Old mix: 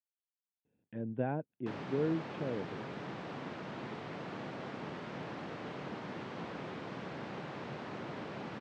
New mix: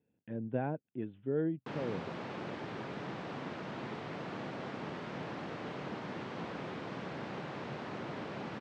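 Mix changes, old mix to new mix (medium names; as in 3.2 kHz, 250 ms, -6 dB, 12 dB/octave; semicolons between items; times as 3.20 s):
speech: entry -0.65 s; reverb: on, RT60 2.6 s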